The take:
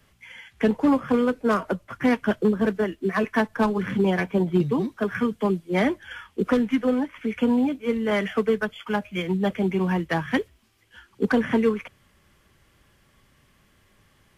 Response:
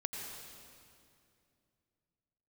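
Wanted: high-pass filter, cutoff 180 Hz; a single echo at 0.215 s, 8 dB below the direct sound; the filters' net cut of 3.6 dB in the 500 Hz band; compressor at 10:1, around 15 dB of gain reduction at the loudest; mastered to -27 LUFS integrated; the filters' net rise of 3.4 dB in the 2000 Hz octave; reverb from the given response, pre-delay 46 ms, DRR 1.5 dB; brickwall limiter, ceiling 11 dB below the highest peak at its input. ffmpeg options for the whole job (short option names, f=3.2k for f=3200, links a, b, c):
-filter_complex "[0:a]highpass=180,equalizer=f=500:t=o:g=-4.5,equalizer=f=2k:t=o:g=4.5,acompressor=threshold=-33dB:ratio=10,alimiter=level_in=5dB:limit=-24dB:level=0:latency=1,volume=-5dB,aecho=1:1:215:0.398,asplit=2[a][b];[1:a]atrim=start_sample=2205,adelay=46[c];[b][c]afir=irnorm=-1:irlink=0,volume=-2.5dB[d];[a][d]amix=inputs=2:normalize=0,volume=9.5dB"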